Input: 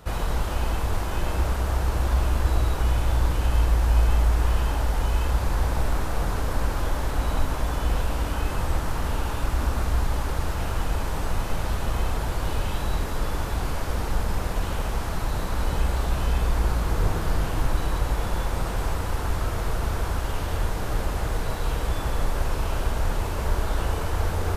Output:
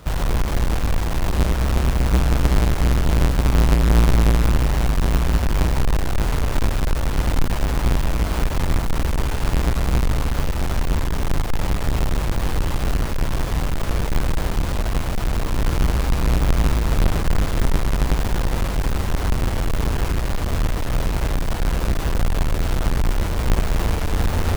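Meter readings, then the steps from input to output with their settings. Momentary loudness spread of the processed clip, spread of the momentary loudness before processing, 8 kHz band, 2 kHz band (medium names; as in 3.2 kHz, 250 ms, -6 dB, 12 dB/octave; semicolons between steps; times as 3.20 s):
5 LU, 5 LU, +4.5 dB, +4.0 dB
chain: square wave that keeps the level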